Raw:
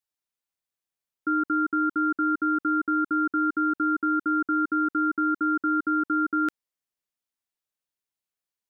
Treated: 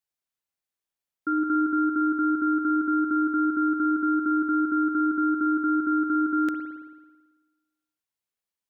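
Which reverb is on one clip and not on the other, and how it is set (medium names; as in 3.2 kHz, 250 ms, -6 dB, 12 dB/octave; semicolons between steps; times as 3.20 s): spring tank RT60 1.3 s, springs 55 ms, chirp 75 ms, DRR 6 dB; trim -1 dB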